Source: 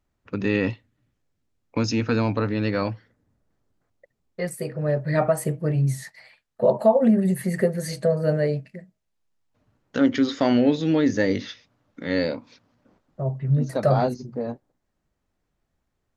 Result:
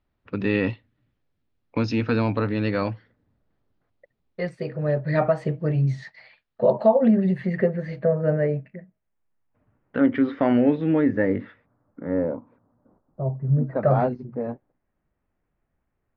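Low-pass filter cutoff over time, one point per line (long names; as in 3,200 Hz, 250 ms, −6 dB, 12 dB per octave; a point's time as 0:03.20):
low-pass filter 24 dB per octave
0:07.15 4,300 Hz
0:08.04 2,300 Hz
0:10.87 2,300 Hz
0:12.22 1,200 Hz
0:13.46 1,200 Hz
0:13.96 2,500 Hz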